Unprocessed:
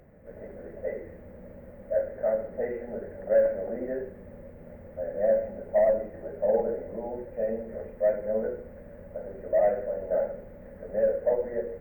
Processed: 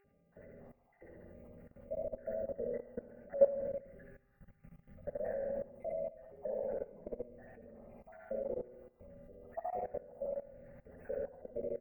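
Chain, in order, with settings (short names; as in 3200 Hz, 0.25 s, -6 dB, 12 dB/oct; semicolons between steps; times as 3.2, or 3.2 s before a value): random spectral dropouts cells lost 75%; 3.66–5.07 EQ curve 200 Hz 0 dB, 290 Hz -19 dB, 870 Hz -17 dB, 1300 Hz +1 dB; buzz 400 Hz, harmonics 7, -65 dBFS -9 dB/oct; feedback echo 71 ms, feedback 43%, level -5 dB; on a send at -3 dB: reverb RT60 0.80 s, pre-delay 47 ms; on the sum: level quantiser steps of 17 dB; gain -3.5 dB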